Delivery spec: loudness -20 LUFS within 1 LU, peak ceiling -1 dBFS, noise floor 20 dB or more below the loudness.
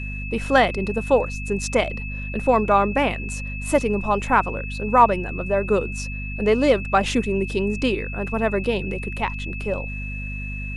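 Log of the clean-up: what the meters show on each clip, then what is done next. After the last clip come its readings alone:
hum 50 Hz; highest harmonic 250 Hz; hum level -28 dBFS; steady tone 2.6 kHz; tone level -33 dBFS; loudness -22.5 LUFS; peak level -2.5 dBFS; loudness target -20.0 LUFS
-> hum notches 50/100/150/200/250 Hz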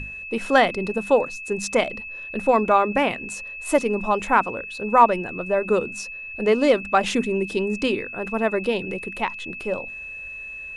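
hum not found; steady tone 2.6 kHz; tone level -33 dBFS
-> band-stop 2.6 kHz, Q 30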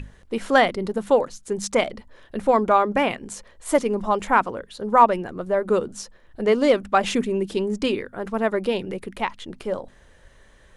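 steady tone not found; loudness -22.5 LUFS; peak level -2.5 dBFS; loudness target -20.0 LUFS
-> trim +2.5 dB; peak limiter -1 dBFS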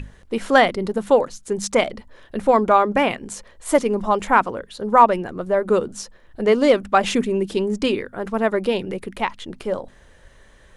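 loudness -20.0 LUFS; peak level -1.0 dBFS; noise floor -50 dBFS

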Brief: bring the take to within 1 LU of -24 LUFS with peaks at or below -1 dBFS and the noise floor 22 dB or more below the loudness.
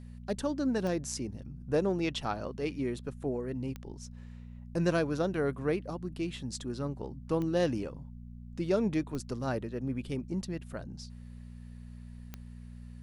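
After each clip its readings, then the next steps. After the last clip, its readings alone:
clicks found 5; hum 60 Hz; highest harmonic 240 Hz; hum level -44 dBFS; loudness -33.5 LUFS; peak level -15.0 dBFS; loudness target -24.0 LUFS
-> de-click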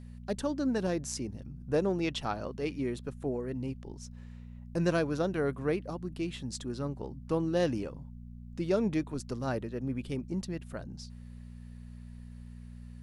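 clicks found 0; hum 60 Hz; highest harmonic 240 Hz; hum level -44 dBFS
-> de-hum 60 Hz, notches 4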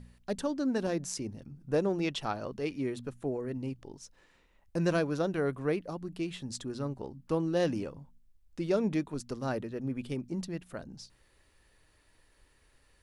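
hum not found; loudness -34.0 LUFS; peak level -15.5 dBFS; loudness target -24.0 LUFS
-> trim +10 dB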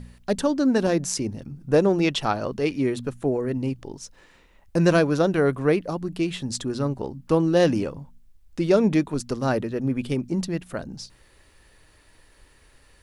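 loudness -24.0 LUFS; peak level -5.5 dBFS; noise floor -57 dBFS

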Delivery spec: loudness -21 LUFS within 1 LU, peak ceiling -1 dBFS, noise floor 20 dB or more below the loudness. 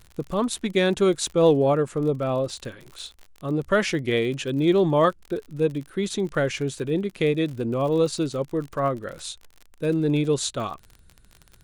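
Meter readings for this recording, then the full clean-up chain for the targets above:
tick rate 43 per s; loudness -24.0 LUFS; peak level -7.0 dBFS; loudness target -21.0 LUFS
-> de-click; trim +3 dB

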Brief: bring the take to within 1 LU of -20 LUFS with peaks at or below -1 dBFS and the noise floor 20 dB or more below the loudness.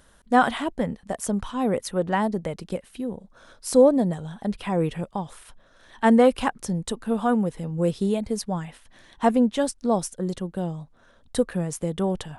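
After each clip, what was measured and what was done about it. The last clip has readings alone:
loudness -24.5 LUFS; peak level -4.5 dBFS; loudness target -20.0 LUFS
-> trim +4.5 dB; peak limiter -1 dBFS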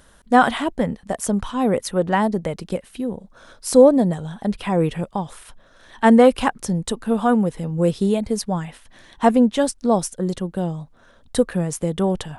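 loudness -20.0 LUFS; peak level -1.0 dBFS; noise floor -52 dBFS

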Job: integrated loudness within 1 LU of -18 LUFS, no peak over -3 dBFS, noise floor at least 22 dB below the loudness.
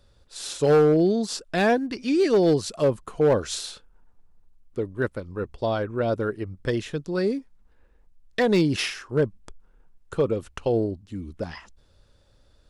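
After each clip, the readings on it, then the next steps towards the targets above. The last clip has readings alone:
clipped samples 0.6%; clipping level -13.5 dBFS; loudness -24.5 LUFS; peak level -13.5 dBFS; loudness target -18.0 LUFS
-> clip repair -13.5 dBFS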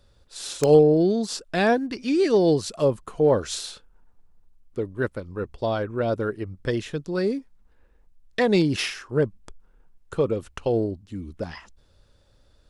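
clipped samples 0.0%; loudness -24.0 LUFS; peak level -4.5 dBFS; loudness target -18.0 LUFS
-> trim +6 dB; peak limiter -3 dBFS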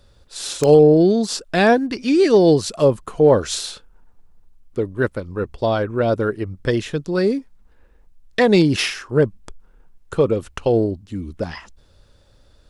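loudness -18.0 LUFS; peak level -3.0 dBFS; noise floor -53 dBFS

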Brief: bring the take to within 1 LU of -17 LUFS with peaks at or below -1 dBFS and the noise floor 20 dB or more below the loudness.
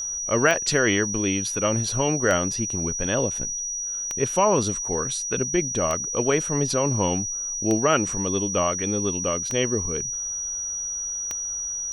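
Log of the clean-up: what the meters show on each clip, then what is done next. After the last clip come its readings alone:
clicks found 7; steady tone 5.8 kHz; tone level -27 dBFS; loudness -23.5 LUFS; peak level -6.5 dBFS; loudness target -17.0 LUFS
-> de-click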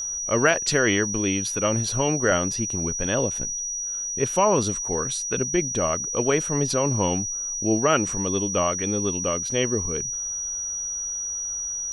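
clicks found 0; steady tone 5.8 kHz; tone level -27 dBFS
-> band-stop 5.8 kHz, Q 30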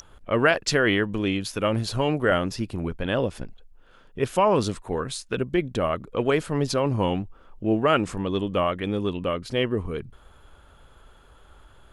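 steady tone not found; loudness -25.0 LUFS; peak level -6.5 dBFS; loudness target -17.0 LUFS
-> trim +8 dB; peak limiter -1 dBFS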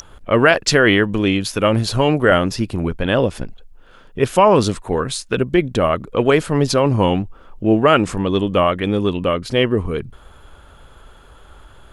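loudness -17.0 LUFS; peak level -1.0 dBFS; noise floor -45 dBFS

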